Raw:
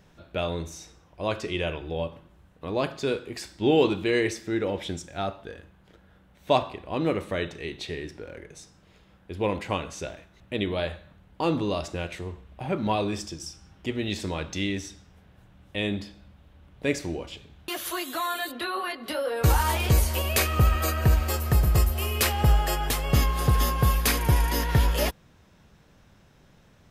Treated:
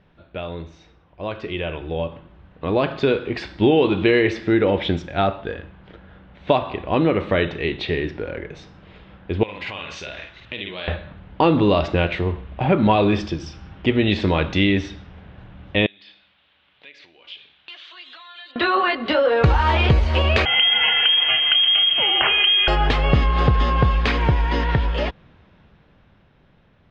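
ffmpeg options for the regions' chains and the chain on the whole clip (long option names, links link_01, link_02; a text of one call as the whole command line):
ffmpeg -i in.wav -filter_complex "[0:a]asettb=1/sr,asplit=3[link_01][link_02][link_03];[link_01]atrim=end=9.434[link_04];[link_02]atrim=start=9.43:end=10.88,asetpts=PTS-STARTPTS,afade=type=in:duration=0.004:curve=qsin,afade=type=out:start_time=1.446:duration=0.004:curve=qsin,asplit=2[link_05][link_06];[link_06]adelay=50,volume=-3dB[link_07];[link_05][link_07]amix=inputs=2:normalize=0,atrim=end_sample=63945,acompressor=threshold=-39dB:ratio=5:attack=3.2:release=140:knee=1:detection=peak,tiltshelf=frequency=1500:gain=-9[link_08];[link_03]atrim=start=10.876[link_09];[link_04][link_08]acrossfade=duration=0.004:curve1=hsin:curve2=qsin[link_10];[link_10][link_09]acrossfade=duration=0.004:curve1=qsin:curve2=hsin,asettb=1/sr,asplit=3[link_11][link_12][link_13];[link_11]atrim=end=15.864[link_14];[link_12]atrim=start=15.86:end=18.56,asetpts=PTS-STARTPTS,afade=type=in:duration=0.004:curve=qsin,afade=type=out:start_time=2.696:duration=0.004:curve=qsin,acompressor=threshold=-41dB:ratio=8:attack=3.2:release=140:knee=1:detection=peak,bandpass=frequency=3600:width_type=q:width=1.4[link_15];[link_13]atrim=start=18.556[link_16];[link_14][link_15]acrossfade=duration=0.004:curve1=hsin:curve2=qsin[link_17];[link_17][link_16]acrossfade=duration=0.004:curve1=qsin:curve2=hsin,asettb=1/sr,asplit=3[link_18][link_19][link_20];[link_18]atrim=end=20.454[link_21];[link_19]atrim=start=20.45:end=22.68,asetpts=PTS-STARTPTS,afade=type=in:duration=0.004:curve=qsin,afade=type=out:start_time=2.226:duration=0.004:curve=qsin,equalizer=frequency=110:width_type=o:width=0.41:gain=-5.5,acompressor=threshold=-20dB:ratio=6:attack=3.2:release=140:knee=1:detection=peak,lowpass=frequency=2800:width_type=q:width=0.5098,lowpass=frequency=2800:width_type=q:width=0.6013,lowpass=frequency=2800:width_type=q:width=0.9,lowpass=frequency=2800:width_type=q:width=2.563,afreqshift=-3300[link_22];[link_20]atrim=start=22.676[link_23];[link_21][link_22]acrossfade=duration=0.004:curve1=hsin:curve2=qsin[link_24];[link_24][link_23]acrossfade=duration=0.004:curve1=qsin:curve2=hsin,acompressor=threshold=-25dB:ratio=6,lowpass=frequency=3600:width=0.5412,lowpass=frequency=3600:width=1.3066,dynaudnorm=framelen=380:gausssize=13:maxgain=14.5dB" out.wav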